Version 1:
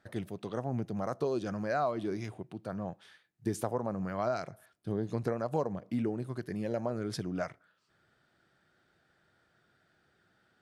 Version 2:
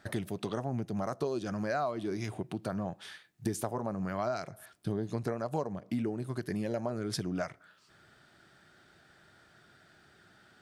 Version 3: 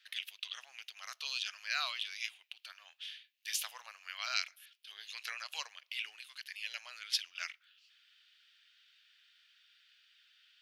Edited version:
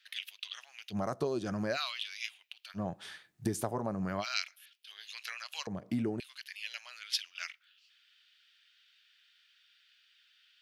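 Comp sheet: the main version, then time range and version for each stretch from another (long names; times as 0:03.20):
3
0:00.93–0:01.75: punch in from 2, crossfade 0.06 s
0:02.77–0:04.22: punch in from 2, crossfade 0.06 s
0:05.67–0:06.20: punch in from 2
not used: 1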